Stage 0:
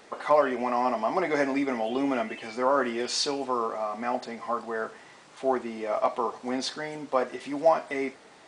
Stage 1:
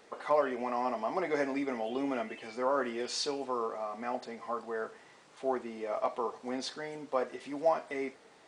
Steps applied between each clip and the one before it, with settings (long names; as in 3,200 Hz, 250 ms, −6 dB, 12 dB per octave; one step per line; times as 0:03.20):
parametric band 460 Hz +4 dB 0.34 octaves
level −7 dB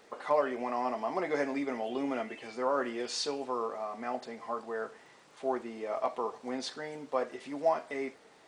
surface crackle 50 per second −60 dBFS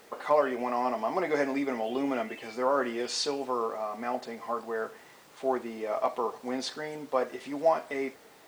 background noise white −68 dBFS
level +3.5 dB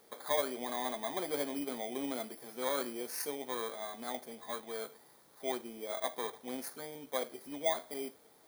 samples in bit-reversed order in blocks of 16 samples
level −8 dB